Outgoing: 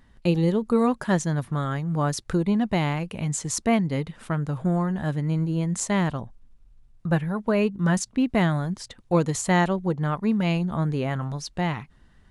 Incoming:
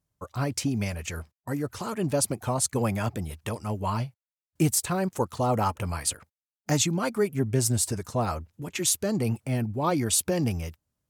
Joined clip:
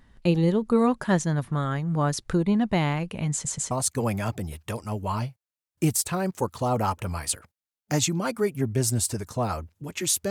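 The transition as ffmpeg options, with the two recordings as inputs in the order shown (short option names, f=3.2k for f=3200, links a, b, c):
-filter_complex "[0:a]apad=whole_dur=10.3,atrim=end=10.3,asplit=3[a][b][c];[a]atrim=end=3.452[d];[b]atrim=start=3.318:end=3.452[e];[c]atrim=start=3.318:end=3.452[f];[1:a]atrim=start=2.488:end=9.08[g];[d][e]acrossfade=d=0.004:c1=hsin:c2=hsin[h];[h][f]acrossfade=d=0.004:c1=hsin:c2=hsin[i];[i][g]acrossfade=d=0.004:c1=hsin:c2=hsin"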